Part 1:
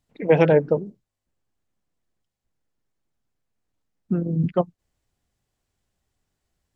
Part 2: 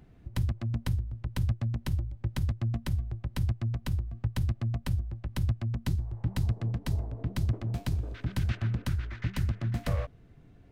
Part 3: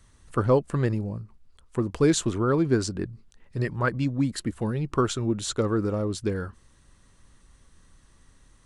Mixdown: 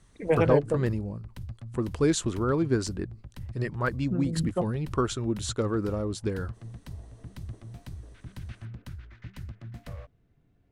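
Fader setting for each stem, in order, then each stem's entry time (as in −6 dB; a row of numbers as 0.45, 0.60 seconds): −7.5, −11.0, −3.0 decibels; 0.00, 0.00, 0.00 seconds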